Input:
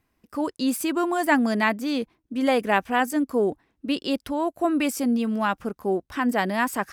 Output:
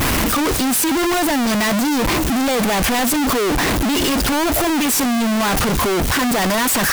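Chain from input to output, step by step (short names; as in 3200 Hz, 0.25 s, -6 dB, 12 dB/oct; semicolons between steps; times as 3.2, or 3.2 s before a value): infinite clipping; gain +7.5 dB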